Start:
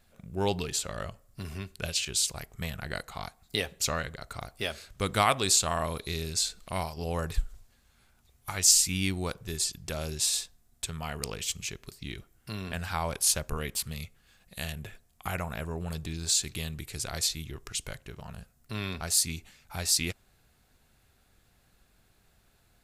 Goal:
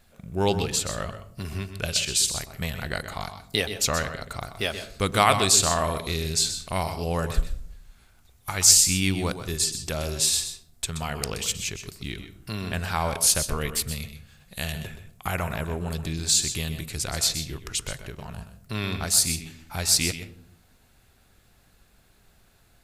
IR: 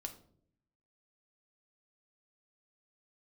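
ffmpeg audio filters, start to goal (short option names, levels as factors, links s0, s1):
-filter_complex "[0:a]asplit=2[s0][s1];[1:a]atrim=start_sample=2205,adelay=125[s2];[s1][s2]afir=irnorm=-1:irlink=0,volume=0.473[s3];[s0][s3]amix=inputs=2:normalize=0,volume=1.78"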